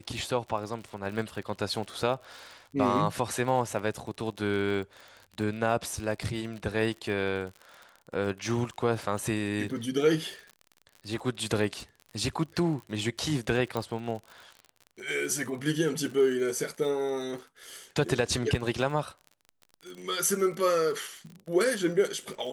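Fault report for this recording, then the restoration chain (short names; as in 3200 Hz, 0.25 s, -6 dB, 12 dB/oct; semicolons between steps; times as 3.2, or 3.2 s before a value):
crackle 48/s -37 dBFS
13.77 pop -18 dBFS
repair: de-click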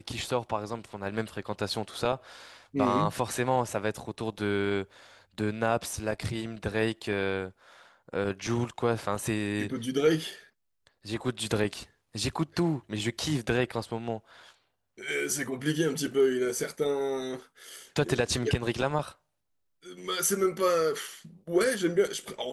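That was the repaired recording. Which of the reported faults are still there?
none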